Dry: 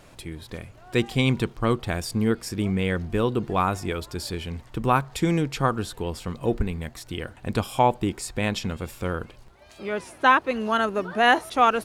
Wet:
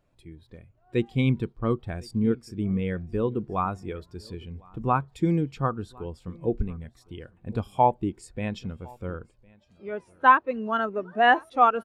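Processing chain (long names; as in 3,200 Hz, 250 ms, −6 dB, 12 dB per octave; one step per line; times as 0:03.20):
repeating echo 1,057 ms, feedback 17%, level −18 dB
every bin expanded away from the loudest bin 1.5 to 1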